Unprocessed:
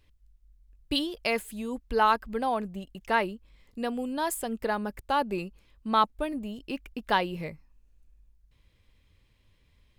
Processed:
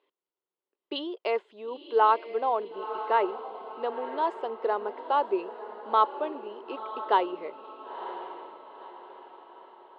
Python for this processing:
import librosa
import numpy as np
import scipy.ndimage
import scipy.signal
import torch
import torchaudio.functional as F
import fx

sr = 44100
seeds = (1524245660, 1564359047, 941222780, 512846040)

p1 = fx.cabinet(x, sr, low_hz=380.0, low_slope=24, high_hz=3100.0, hz=(390.0, 990.0, 1700.0, 2400.0), db=(10, 5, -8, -9))
y = p1 + fx.echo_diffused(p1, sr, ms=978, feedback_pct=44, wet_db=-11.5, dry=0)